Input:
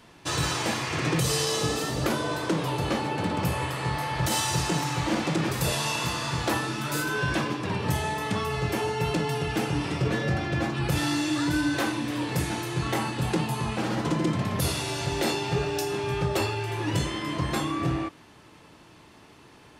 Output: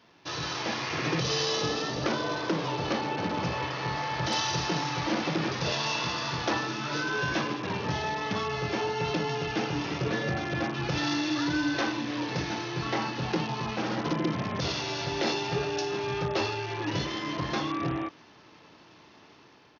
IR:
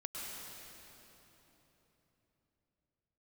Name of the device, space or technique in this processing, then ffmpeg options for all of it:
Bluetooth headset: -af "highpass=f=190:p=1,dynaudnorm=f=440:g=3:m=5dB,aresample=16000,aresample=44100,volume=-6dB" -ar 48000 -c:a sbc -b:a 64k

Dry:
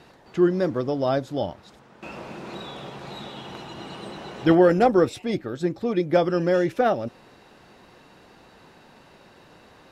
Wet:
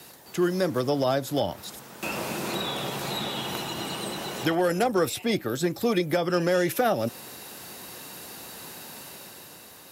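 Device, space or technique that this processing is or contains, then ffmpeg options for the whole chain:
FM broadcast chain: -filter_complex "[0:a]highpass=73,dynaudnorm=f=120:g=13:m=6dB,acrossover=split=220|480|3700[a][b][c][d];[a]acompressor=threshold=-29dB:ratio=4[e];[b]acompressor=threshold=-29dB:ratio=4[f];[c]acompressor=threshold=-19dB:ratio=4[g];[d]acompressor=threshold=-52dB:ratio=4[h];[e][f][g][h]amix=inputs=4:normalize=0,aemphasis=mode=production:type=50fm,alimiter=limit=-13.5dB:level=0:latency=1:release=252,asoftclip=type=hard:threshold=-15dB,lowpass=f=15k:w=0.5412,lowpass=f=15k:w=1.3066,aemphasis=mode=production:type=50fm"

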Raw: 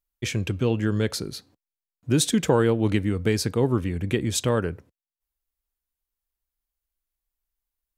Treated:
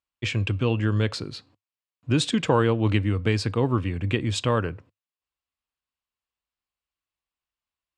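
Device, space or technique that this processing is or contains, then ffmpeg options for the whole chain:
car door speaker: -af "highpass=94,equalizer=f=100:t=q:w=4:g=7,equalizer=f=190:t=q:w=4:g=-4,equalizer=f=400:t=q:w=4:g=-4,equalizer=f=1.1k:t=q:w=4:g=6,equalizer=f=2.7k:t=q:w=4:g=6,equalizer=f=6.1k:t=q:w=4:g=-9,lowpass=f=7.1k:w=0.5412,lowpass=f=7.1k:w=1.3066"

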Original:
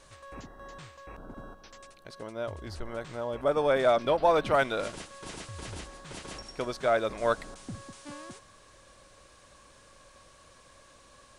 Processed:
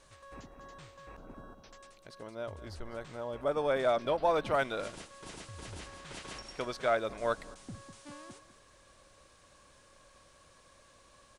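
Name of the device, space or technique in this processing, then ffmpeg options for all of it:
ducked delay: -filter_complex "[0:a]asplit=3[a][b][c];[b]adelay=201,volume=-9dB[d];[c]apad=whole_len=510985[e];[d][e]sidechaincompress=threshold=-37dB:ratio=8:attack=16:release=1280[f];[a][f]amix=inputs=2:normalize=0,asettb=1/sr,asplit=3[g][h][i];[g]atrim=end=5.814[j];[h]atrim=start=5.81:end=6.95,asetpts=PTS-STARTPTS,afade=t=in:d=0.004:c=qsin,afade=t=out:st=1.136:d=0.004:c=qsin,equalizer=f=2.3k:w=0.45:g=4.5[k];[i]atrim=start=6.946[l];[j][k]acrossfade=d=0.004:c1=hsin:c2=qsin[m];[m][l]acrossfade=d=0.004:c1=qsin:c2=hsin,volume=-5dB"

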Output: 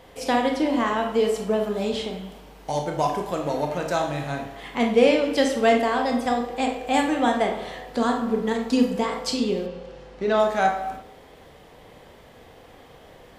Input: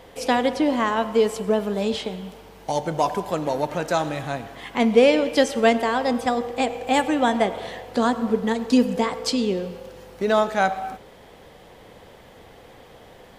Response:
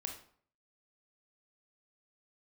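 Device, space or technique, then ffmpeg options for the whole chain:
bathroom: -filter_complex "[1:a]atrim=start_sample=2205[a];[0:a][a]afir=irnorm=-1:irlink=0,asettb=1/sr,asplit=3[b][c][d];[b]atrim=end=9.664[e];[c]atrim=start=9.66:end=10.4,asetpts=PTS-STARTPTS,afade=t=in:d=0.004:c=qsin,afade=t=out:st=0.736:d=0.004:c=qsin,lowpass=5.3k[f];[d]atrim=start=10.396[g];[e][f]acrossfade=d=0.004:c1=hsin:c2=qsin[h];[h][g]acrossfade=d=0.004:c1=qsin:c2=hsin"

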